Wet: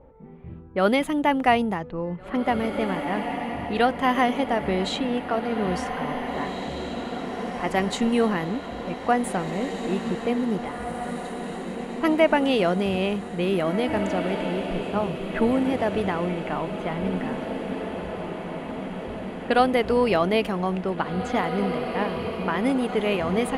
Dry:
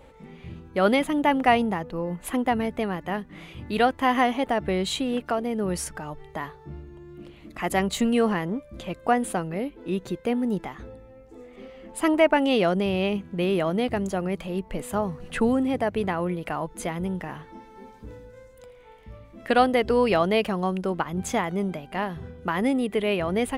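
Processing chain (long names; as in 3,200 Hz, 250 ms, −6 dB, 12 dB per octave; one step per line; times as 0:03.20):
low-pass that shuts in the quiet parts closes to 800 Hz, open at −20 dBFS
feedback delay with all-pass diffusion 1,911 ms, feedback 65%, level −7.5 dB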